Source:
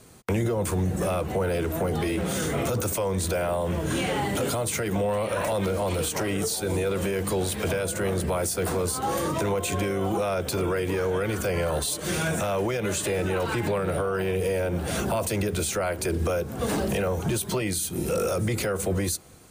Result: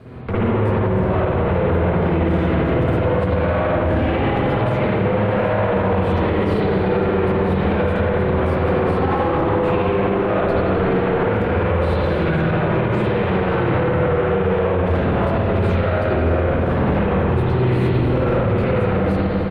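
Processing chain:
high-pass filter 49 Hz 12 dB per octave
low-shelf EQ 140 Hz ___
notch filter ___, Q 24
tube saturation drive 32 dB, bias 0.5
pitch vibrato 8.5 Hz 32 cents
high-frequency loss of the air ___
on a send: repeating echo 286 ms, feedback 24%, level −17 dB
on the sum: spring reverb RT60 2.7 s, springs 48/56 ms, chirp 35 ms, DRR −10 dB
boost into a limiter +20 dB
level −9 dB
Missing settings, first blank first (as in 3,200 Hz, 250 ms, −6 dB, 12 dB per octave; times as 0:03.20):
+6.5 dB, 3,300 Hz, 440 metres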